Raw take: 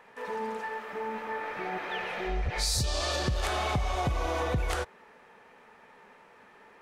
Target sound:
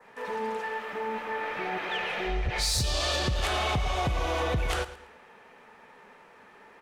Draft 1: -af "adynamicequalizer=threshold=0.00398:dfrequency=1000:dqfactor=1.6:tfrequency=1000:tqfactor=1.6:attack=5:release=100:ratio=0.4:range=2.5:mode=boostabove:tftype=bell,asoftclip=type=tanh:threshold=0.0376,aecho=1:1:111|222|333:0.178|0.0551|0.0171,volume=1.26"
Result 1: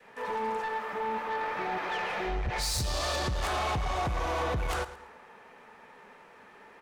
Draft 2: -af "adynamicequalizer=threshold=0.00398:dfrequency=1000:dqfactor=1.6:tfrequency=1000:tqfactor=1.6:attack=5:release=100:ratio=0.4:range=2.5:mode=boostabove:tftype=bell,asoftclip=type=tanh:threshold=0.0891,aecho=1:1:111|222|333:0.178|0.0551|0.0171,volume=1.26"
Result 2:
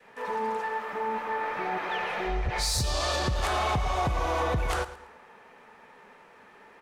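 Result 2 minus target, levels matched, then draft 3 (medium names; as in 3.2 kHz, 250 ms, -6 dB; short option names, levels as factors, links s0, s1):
4 kHz band -3.0 dB
-af "adynamicequalizer=threshold=0.00398:dfrequency=3000:dqfactor=1.6:tfrequency=3000:tqfactor=1.6:attack=5:release=100:ratio=0.4:range=2.5:mode=boostabove:tftype=bell,asoftclip=type=tanh:threshold=0.0891,aecho=1:1:111|222|333:0.178|0.0551|0.0171,volume=1.26"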